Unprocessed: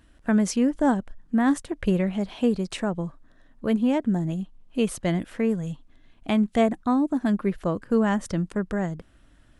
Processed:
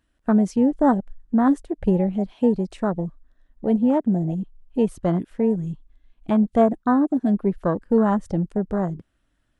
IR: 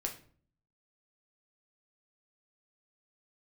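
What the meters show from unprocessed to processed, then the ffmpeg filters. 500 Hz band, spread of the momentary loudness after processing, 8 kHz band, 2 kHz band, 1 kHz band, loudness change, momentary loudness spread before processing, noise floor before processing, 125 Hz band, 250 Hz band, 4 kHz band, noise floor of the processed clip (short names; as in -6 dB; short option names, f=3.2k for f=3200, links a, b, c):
+4.0 dB, 11 LU, under -10 dB, -4.0 dB, +4.0 dB, +3.0 dB, 10 LU, -58 dBFS, +3.0 dB, +3.0 dB, under -10 dB, -69 dBFS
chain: -af "afwtdn=0.0398,lowshelf=f=460:g=-3,volume=5.5dB"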